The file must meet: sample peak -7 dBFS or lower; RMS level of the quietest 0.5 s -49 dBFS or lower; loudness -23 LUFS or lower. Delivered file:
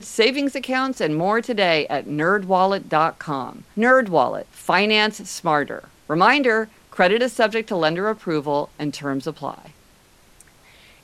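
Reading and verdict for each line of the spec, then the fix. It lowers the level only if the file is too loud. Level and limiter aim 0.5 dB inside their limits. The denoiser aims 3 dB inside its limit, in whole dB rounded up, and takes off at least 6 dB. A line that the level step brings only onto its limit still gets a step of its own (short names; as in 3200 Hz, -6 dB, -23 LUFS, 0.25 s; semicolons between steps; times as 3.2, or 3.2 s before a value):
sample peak -2.5 dBFS: fail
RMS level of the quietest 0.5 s -53 dBFS: OK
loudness -20.0 LUFS: fail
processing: gain -3.5 dB; limiter -7.5 dBFS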